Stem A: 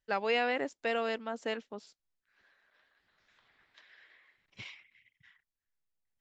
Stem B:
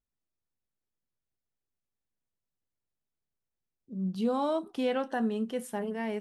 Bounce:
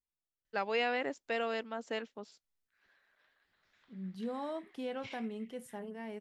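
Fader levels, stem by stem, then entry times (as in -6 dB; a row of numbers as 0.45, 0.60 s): -2.5, -10.0 dB; 0.45, 0.00 s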